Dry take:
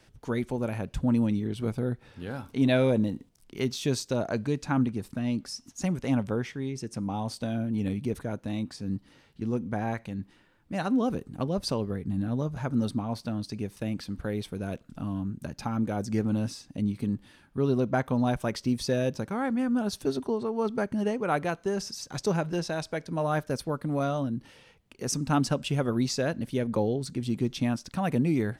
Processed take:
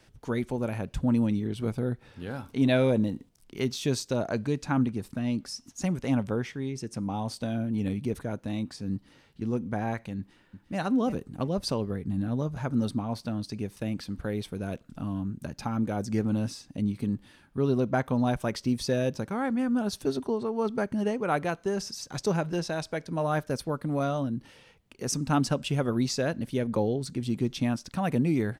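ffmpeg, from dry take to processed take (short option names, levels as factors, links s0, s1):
-filter_complex "[0:a]asplit=2[s0][s1];[s1]afade=t=in:st=10.18:d=0.01,afade=t=out:st=10.77:d=0.01,aecho=0:1:350|700|1050:0.316228|0.0632456|0.0126491[s2];[s0][s2]amix=inputs=2:normalize=0"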